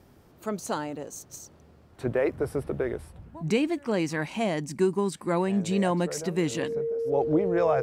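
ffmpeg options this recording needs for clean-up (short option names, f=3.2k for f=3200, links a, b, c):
-af "bandreject=f=460:w=30"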